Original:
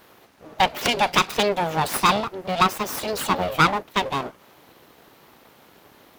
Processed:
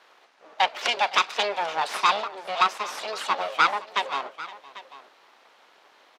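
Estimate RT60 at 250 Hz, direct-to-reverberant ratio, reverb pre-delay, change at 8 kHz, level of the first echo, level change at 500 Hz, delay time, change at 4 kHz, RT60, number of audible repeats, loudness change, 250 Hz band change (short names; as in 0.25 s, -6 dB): none, none, none, -7.5 dB, -19.5 dB, -6.5 dB, 0.513 s, -2.0 dB, none, 2, -3.0 dB, -18.0 dB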